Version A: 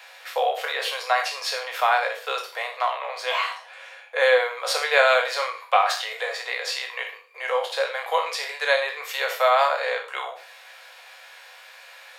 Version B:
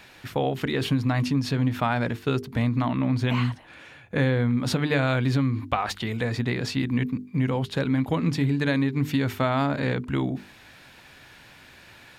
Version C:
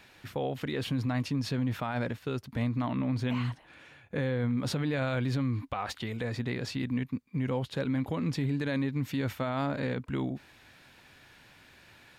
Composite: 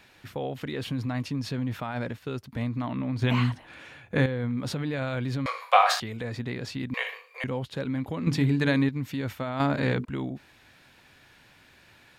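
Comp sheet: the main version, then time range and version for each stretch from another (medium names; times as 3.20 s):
C
3.22–4.26 s: from B
5.46–6.00 s: from A
6.94–7.44 s: from A
8.27–8.89 s: from B
9.60–10.05 s: from B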